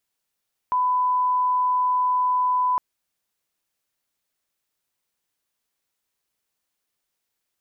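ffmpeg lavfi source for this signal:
ffmpeg -f lavfi -i "sine=frequency=1000:duration=2.06:sample_rate=44100,volume=0.06dB" out.wav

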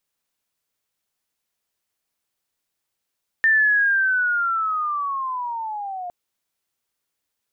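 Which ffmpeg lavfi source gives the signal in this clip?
ffmpeg -f lavfi -i "aevalsrc='pow(10,(-13-15*t/2.66)/20)*sin(2*PI*(1800*t-1100*t*t/(2*2.66)))':duration=2.66:sample_rate=44100" out.wav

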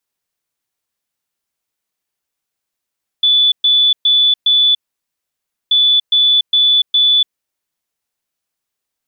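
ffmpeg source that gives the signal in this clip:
ffmpeg -f lavfi -i "aevalsrc='0.398*sin(2*PI*3470*t)*clip(min(mod(mod(t,2.48),0.41),0.29-mod(mod(t,2.48),0.41))/0.005,0,1)*lt(mod(t,2.48),1.64)':duration=4.96:sample_rate=44100" out.wav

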